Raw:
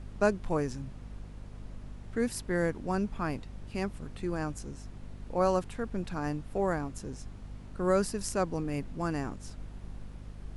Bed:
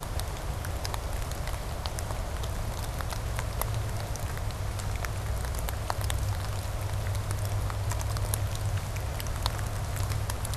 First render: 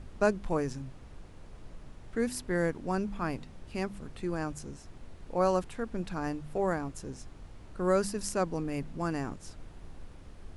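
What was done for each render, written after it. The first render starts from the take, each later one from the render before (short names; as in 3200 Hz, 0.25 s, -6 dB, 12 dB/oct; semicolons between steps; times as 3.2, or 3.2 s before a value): de-hum 50 Hz, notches 5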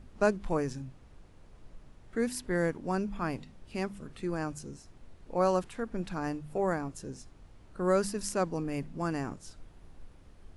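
noise print and reduce 6 dB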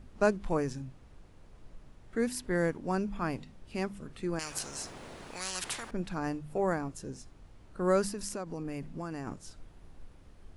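4.39–5.91 spectral compressor 10:1; 8.08–9.27 compressor, threshold -33 dBFS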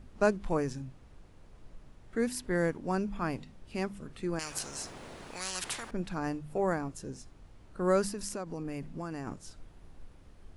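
nothing audible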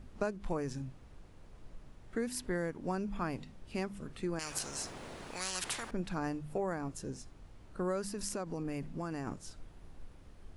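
compressor 6:1, threshold -31 dBFS, peak gain reduction 11 dB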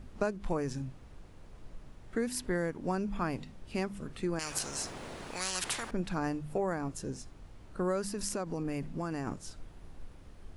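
gain +3 dB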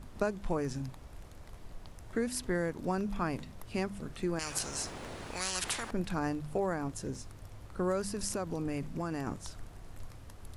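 add bed -21.5 dB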